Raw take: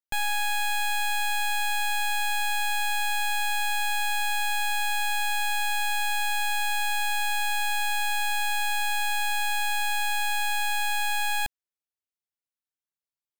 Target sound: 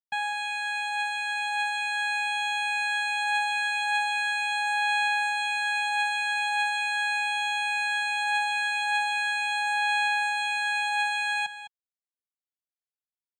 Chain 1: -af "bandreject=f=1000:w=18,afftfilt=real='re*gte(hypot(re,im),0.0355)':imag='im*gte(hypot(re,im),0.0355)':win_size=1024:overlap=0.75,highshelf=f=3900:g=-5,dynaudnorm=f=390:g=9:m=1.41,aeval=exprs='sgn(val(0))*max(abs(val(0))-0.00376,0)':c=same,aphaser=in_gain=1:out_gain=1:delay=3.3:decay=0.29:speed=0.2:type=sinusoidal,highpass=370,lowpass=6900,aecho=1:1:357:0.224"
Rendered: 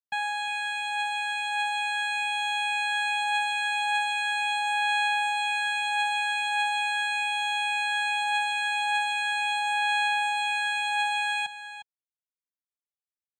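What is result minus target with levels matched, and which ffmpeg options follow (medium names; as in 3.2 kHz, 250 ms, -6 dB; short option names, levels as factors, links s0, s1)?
echo 149 ms late
-af "bandreject=f=1000:w=18,afftfilt=real='re*gte(hypot(re,im),0.0355)':imag='im*gte(hypot(re,im),0.0355)':win_size=1024:overlap=0.75,highshelf=f=3900:g=-5,dynaudnorm=f=390:g=9:m=1.41,aeval=exprs='sgn(val(0))*max(abs(val(0))-0.00376,0)':c=same,aphaser=in_gain=1:out_gain=1:delay=3.3:decay=0.29:speed=0.2:type=sinusoidal,highpass=370,lowpass=6900,aecho=1:1:208:0.224"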